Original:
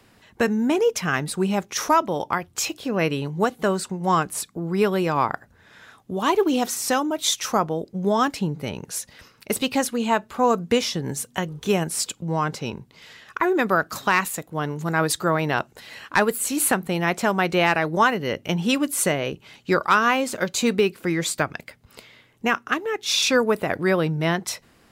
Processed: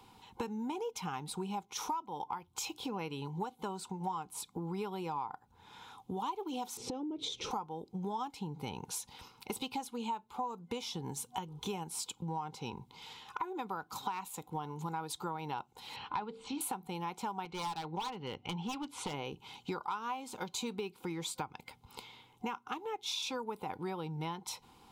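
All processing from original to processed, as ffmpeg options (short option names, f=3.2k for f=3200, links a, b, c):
-filter_complex "[0:a]asettb=1/sr,asplit=3[a][b][c];[a]atrim=end=6.774[d];[b]atrim=start=6.77:end=7.51,asetpts=PTS-STARTPTS,afade=t=in:d=0.004:c=qsin,afade=t=out:st=0.736:d=0.004:c=qsin,lowpass=4.2k,lowshelf=f=640:t=q:w=3:g=12,acompressor=threshold=-25dB:ratio=6:attack=3.2:release=140:knee=1:detection=peak[e];[c]atrim=start=7.506[f];[d][e]acrossfade=d=0.004:c1=hsin:c2=qsin[g];[g][f]acrossfade=d=0.004:c1=qsin:c2=hsin,asettb=1/sr,asplit=3[h][i][j];[h]atrim=end=15.964[k];[i]atrim=start=15.96:end=16.61,asetpts=PTS-STARTPTS,afade=t=in:d=0.004:c=qsin,afade=t=out:st=0.646:d=0.004:c=qsin,lowpass=f=4.4k:w=0.5412,lowpass=f=4.4k:w=1.3066,equalizer=f=110:w=0.65:g=6.5,bandreject=f=50:t=h:w=6,bandreject=f=100:t=h:w=6,bandreject=f=150:t=h:w=6,bandreject=f=200:t=h:w=6,bandreject=f=250:t=h:w=6,bandreject=f=300:t=h:w=6,bandreject=f=350:t=h:w=6,bandreject=f=400:t=h:w=6,bandreject=f=450:t=h:w=6,bandreject=f=500:t=h:w=6[l];[j]atrim=start=16.606[m];[k][l]acrossfade=d=0.004:c1=hsin:c2=qsin[n];[n][m]acrossfade=d=0.004:c1=qsin:c2=hsin,asettb=1/sr,asplit=3[o][p][q];[o]atrim=end=17.454[r];[p]atrim=start=17.45:end=19.14,asetpts=PTS-STARTPTS,afade=t=in:d=0.004:c=qsin,afade=t=out:st=1.686:d=0.004:c=qsin,lowpass=3.6k,equalizer=f=350:t=o:w=2.3:g=-4.5,aeval=exprs='0.112*(abs(mod(val(0)/0.112+3,4)-2)-1)':c=same[s];[q]atrim=start=19.136[t];[r][s]acrossfade=d=0.004:c1=hsin:c2=qsin[u];[u][t]acrossfade=d=0.004:c1=qsin:c2=hsin,superequalizer=8b=0.398:9b=3.55:11b=0.316:13b=1.58,acompressor=threshold=-31dB:ratio=6,volume=-5.5dB"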